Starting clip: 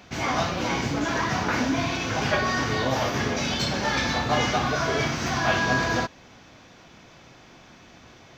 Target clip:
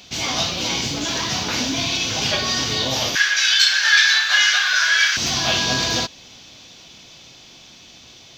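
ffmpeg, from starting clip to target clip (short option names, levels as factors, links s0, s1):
-filter_complex "[0:a]asettb=1/sr,asplit=3[s0][s1][s2];[s0]atrim=end=3.154[s3];[s1]atrim=start=3.15:end=5.17,asetpts=PTS-STARTPTS,afade=t=in:d=0.004:c=qsin,afade=t=out:st=2.016:d=0.004:c=qsin,highpass=f=1600:t=q:w=15[s4];[s2]atrim=start=5.166[s5];[s3][s4]acrossfade=d=0.004:c1=hsin:c2=qsin[s6];[s6][s5]acrossfade=d=0.004:c1=qsin:c2=hsin,highshelf=f=2400:t=q:w=1.5:g=11.5,dynaudnorm=f=290:g=13:m=3.76,volume=0.891"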